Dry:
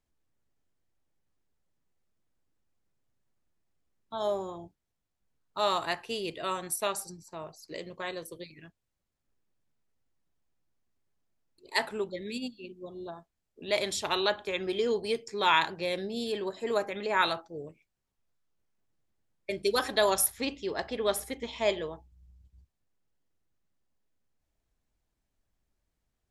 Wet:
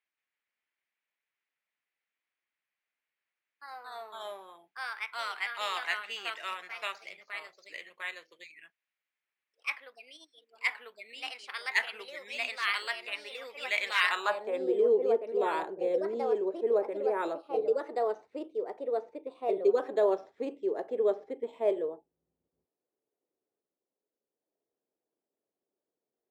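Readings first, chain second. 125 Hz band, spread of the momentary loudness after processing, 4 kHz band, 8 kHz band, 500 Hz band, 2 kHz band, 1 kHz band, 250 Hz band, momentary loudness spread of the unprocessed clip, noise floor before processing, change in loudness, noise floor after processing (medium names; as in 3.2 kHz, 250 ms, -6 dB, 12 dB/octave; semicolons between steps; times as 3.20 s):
under -15 dB, 17 LU, -4.0 dB, -15.5 dB, +2.5 dB, +2.0 dB, -3.0 dB, -2.5 dB, 18 LU, -83 dBFS, -1.0 dB, under -85 dBFS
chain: Bessel high-pass 260 Hz, order 2; careless resampling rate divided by 4×, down filtered, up hold; ever faster or slower copies 172 ms, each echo +2 st, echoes 2; band-pass sweep 2.2 kHz -> 430 Hz, 14.03–14.66 s; trim +6 dB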